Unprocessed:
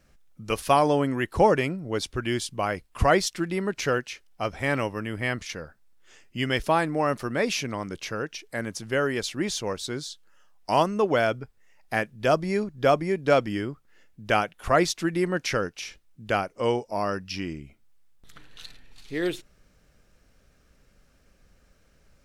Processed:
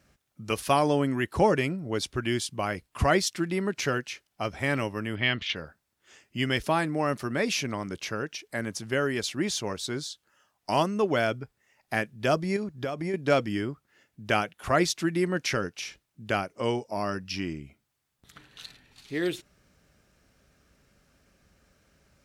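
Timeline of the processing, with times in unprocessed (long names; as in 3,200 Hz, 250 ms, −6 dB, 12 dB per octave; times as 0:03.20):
0:05.15–0:05.56: low-pass with resonance 3,300 Hz, resonance Q 4.2
0:12.56–0:13.14: downward compressor, threshold −26 dBFS
whole clip: high-pass filter 64 Hz; notch filter 490 Hz, Q 12; dynamic equaliser 860 Hz, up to −4 dB, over −32 dBFS, Q 0.77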